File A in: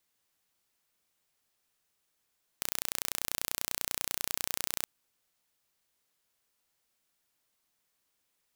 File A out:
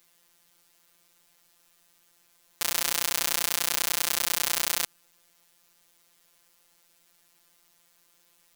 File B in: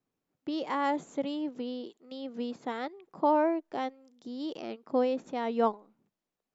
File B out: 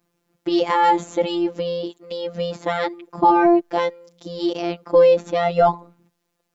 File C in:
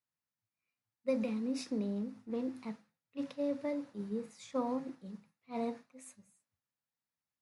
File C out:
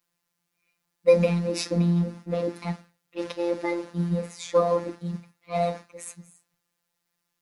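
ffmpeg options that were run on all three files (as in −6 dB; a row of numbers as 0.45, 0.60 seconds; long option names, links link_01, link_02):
-af "afftfilt=real='hypot(re,im)*cos(PI*b)':imag='0':win_size=1024:overlap=0.75,apsyclip=24dB,volume=-6.5dB"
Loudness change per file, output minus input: +8.5, +12.5, +12.0 LU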